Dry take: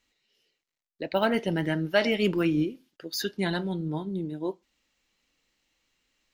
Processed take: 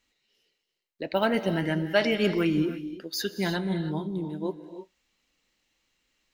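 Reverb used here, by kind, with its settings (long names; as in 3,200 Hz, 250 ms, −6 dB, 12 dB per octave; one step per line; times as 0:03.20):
reverb whose tail is shaped and stops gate 350 ms rising, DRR 10.5 dB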